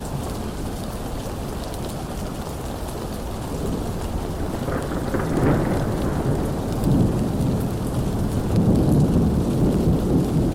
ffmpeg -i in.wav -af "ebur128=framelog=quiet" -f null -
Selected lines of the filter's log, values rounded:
Integrated loudness:
  I:         -23.3 LUFS
  Threshold: -33.3 LUFS
Loudness range:
  LRA:         8.9 LU
  Threshold: -43.6 LUFS
  LRA low:   -29.5 LUFS
  LRA high:  -20.6 LUFS